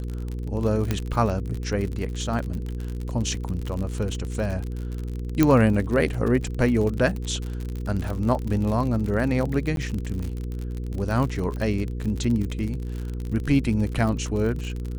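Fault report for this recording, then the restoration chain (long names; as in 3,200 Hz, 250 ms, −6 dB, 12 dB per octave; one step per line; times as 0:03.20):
surface crackle 50 per second −28 dBFS
mains hum 60 Hz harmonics 8 −30 dBFS
0:00.91: click −10 dBFS
0:05.43: click −6 dBFS
0:09.76–0:09.77: drop-out 12 ms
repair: click removal
hum removal 60 Hz, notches 8
repair the gap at 0:09.76, 12 ms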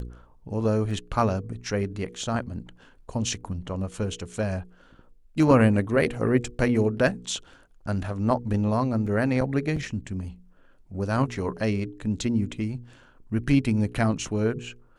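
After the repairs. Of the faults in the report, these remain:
0:00.91: click
0:05.43: click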